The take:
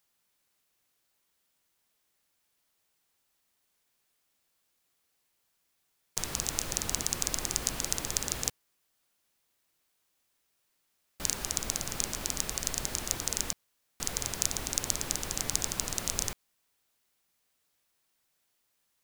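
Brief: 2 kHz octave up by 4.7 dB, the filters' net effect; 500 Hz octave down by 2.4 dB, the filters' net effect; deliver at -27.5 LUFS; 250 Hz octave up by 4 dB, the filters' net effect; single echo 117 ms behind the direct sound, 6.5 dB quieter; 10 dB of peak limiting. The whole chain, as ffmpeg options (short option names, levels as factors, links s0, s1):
-af "equalizer=f=250:t=o:g=6.5,equalizer=f=500:t=o:g=-5.5,equalizer=f=2000:t=o:g=6,alimiter=limit=0.251:level=0:latency=1,aecho=1:1:117:0.473,volume=2.24"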